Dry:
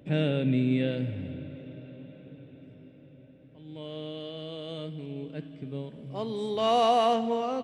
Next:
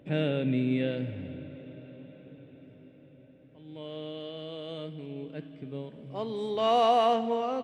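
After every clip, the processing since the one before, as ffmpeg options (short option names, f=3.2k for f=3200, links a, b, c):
-af "bass=f=250:g=-4,treble=f=4k:g=-6"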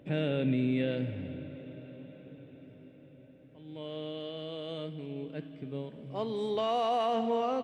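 -af "alimiter=limit=-20.5dB:level=0:latency=1:release=14"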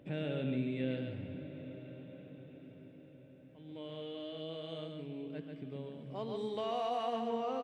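-filter_complex "[0:a]asplit=2[a][b];[b]acompressor=threshold=-41dB:ratio=6,volume=0dB[c];[a][c]amix=inputs=2:normalize=0,aecho=1:1:139:0.562,volume=-9dB"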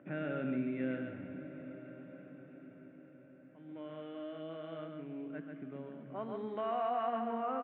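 -af "highpass=220,equalizer=f=460:t=q:w=4:g=-9,equalizer=f=880:t=q:w=4:g=-4,equalizer=f=1.4k:t=q:w=4:g=8,lowpass=f=2.1k:w=0.5412,lowpass=f=2.1k:w=1.3066,volume=3dB"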